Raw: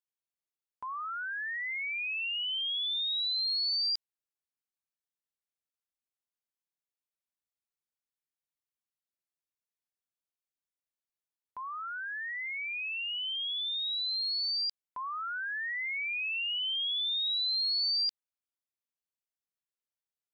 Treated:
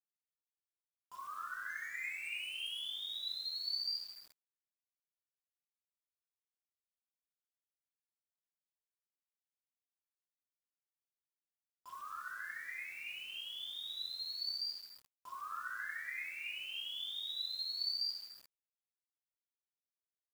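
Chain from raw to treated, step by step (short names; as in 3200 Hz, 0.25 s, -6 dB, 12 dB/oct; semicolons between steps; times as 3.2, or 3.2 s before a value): resonator bank E2 minor, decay 0.21 s; 1.69–2.82 sample leveller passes 1; bands offset in time highs, lows 0.29 s, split 2800 Hz; plate-style reverb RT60 1.3 s, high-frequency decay 0.5×, DRR -5.5 dB; bit-crush 9-bit; gain -4 dB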